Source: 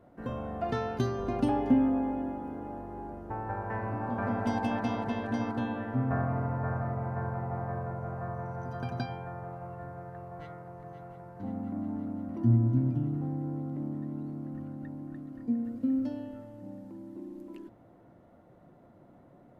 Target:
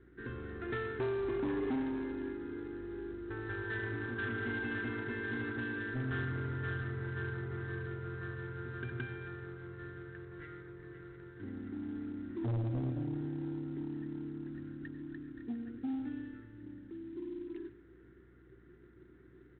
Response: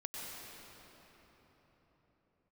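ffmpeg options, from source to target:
-filter_complex "[0:a]acrossover=split=2800[s0][s1];[s1]acompressor=threshold=0.001:ratio=4:attack=1:release=60[s2];[s0][s2]amix=inputs=2:normalize=0,firequalizer=gain_entry='entry(120,0);entry(190,-10);entry(380,11);entry(600,-25);entry(1600,12);entry(2900,-3)':delay=0.05:min_phase=1,aeval=exprs='val(0)+0.00112*(sin(2*PI*60*n/s)+sin(2*PI*2*60*n/s)/2+sin(2*PI*3*60*n/s)/3+sin(2*PI*4*60*n/s)/4+sin(2*PI*5*60*n/s)/5)':c=same,asoftclip=type=tanh:threshold=0.0447,acrusher=bits=8:mode=log:mix=0:aa=0.000001,asplit=2[s3][s4];[1:a]atrim=start_sample=2205,afade=t=out:st=0.21:d=0.01,atrim=end_sample=9702[s5];[s4][s5]afir=irnorm=-1:irlink=0,volume=0.668[s6];[s3][s6]amix=inputs=2:normalize=0,volume=0.473" -ar 8000 -c:a adpcm_ima_wav

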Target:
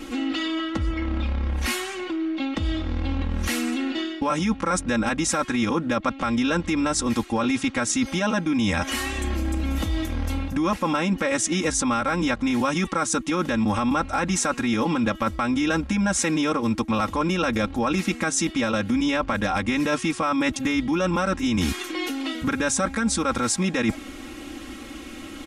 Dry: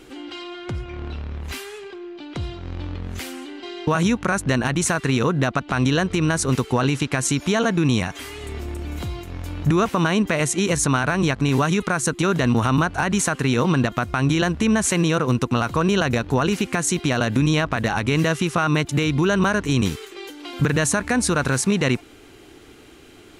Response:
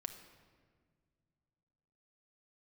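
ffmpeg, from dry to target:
-af "aecho=1:1:3.4:0.99,asetrate=40517,aresample=44100,areverse,acompressor=threshold=0.0447:ratio=5,areverse,volume=1.88"

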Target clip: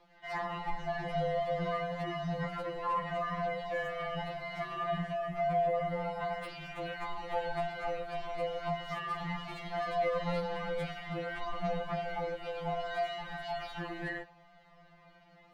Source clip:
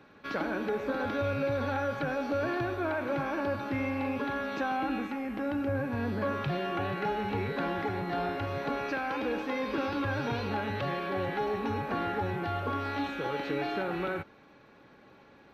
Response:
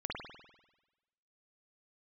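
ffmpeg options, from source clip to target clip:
-filter_complex "[0:a]acrossover=split=1900[s0][s1];[s1]aeval=exprs='0.0126*(abs(mod(val(0)/0.0126+3,4)-2)-1)':c=same[s2];[s0][s2]amix=inputs=2:normalize=0,flanger=delay=5.7:depth=4.2:regen=-24:speed=0.15:shape=triangular,aeval=exprs='val(0)*sin(2*PI*410*n/s)':c=same,afftfilt=real='re*2.83*eq(mod(b,8),0)':imag='im*2.83*eq(mod(b,8),0)':win_size=2048:overlap=0.75,volume=1.78"

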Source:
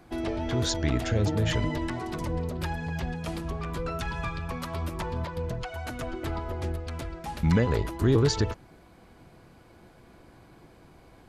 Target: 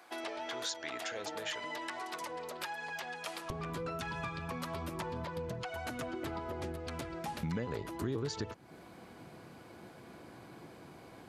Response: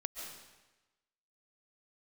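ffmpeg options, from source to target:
-af "asetnsamples=n=441:p=0,asendcmd='3.5 highpass f 130',highpass=740,acompressor=threshold=0.00891:ratio=3,volume=1.33"

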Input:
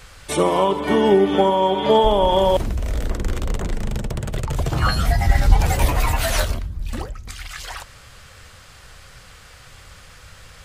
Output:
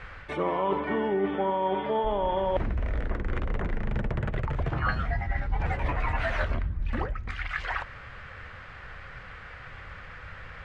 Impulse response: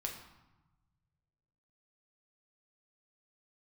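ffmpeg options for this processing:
-af "areverse,acompressor=threshold=0.0631:ratio=12,areverse,lowpass=f=1900:t=q:w=1.8"

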